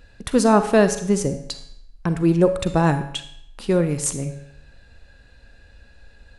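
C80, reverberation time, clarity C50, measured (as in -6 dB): 13.0 dB, 0.70 s, 10.0 dB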